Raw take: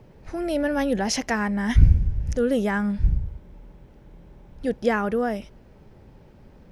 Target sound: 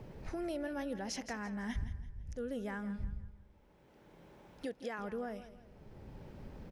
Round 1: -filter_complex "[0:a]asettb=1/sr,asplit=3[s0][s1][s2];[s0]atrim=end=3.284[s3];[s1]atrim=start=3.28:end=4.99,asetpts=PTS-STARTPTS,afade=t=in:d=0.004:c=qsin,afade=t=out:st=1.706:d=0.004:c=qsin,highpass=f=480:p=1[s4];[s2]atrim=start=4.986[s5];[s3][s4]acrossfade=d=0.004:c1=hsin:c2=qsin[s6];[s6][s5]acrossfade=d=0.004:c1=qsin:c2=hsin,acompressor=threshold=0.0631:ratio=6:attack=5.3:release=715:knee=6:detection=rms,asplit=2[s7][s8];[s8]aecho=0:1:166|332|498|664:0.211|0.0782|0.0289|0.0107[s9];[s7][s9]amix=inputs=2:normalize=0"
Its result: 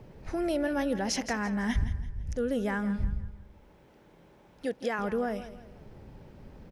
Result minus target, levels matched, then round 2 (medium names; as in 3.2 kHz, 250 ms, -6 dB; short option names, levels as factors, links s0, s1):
compression: peak gain reduction -10 dB
-filter_complex "[0:a]asettb=1/sr,asplit=3[s0][s1][s2];[s0]atrim=end=3.284[s3];[s1]atrim=start=3.28:end=4.99,asetpts=PTS-STARTPTS,afade=t=in:d=0.004:c=qsin,afade=t=out:st=1.706:d=0.004:c=qsin,highpass=f=480:p=1[s4];[s2]atrim=start=4.986[s5];[s3][s4]acrossfade=d=0.004:c1=hsin:c2=qsin[s6];[s6][s5]acrossfade=d=0.004:c1=qsin:c2=hsin,acompressor=threshold=0.0158:ratio=6:attack=5.3:release=715:knee=6:detection=rms,asplit=2[s7][s8];[s8]aecho=0:1:166|332|498|664:0.211|0.0782|0.0289|0.0107[s9];[s7][s9]amix=inputs=2:normalize=0"